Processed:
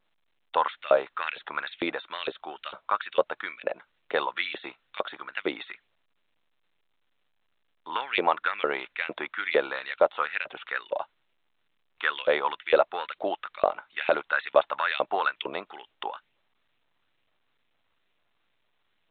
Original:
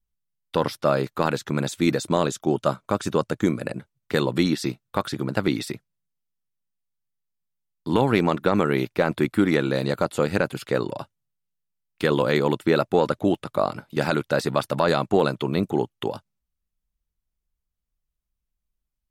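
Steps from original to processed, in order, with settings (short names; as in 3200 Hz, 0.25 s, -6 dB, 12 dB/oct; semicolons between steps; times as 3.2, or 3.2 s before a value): LFO high-pass saw up 2.2 Hz 500–2900 Hz; gain -2.5 dB; A-law 64 kbps 8000 Hz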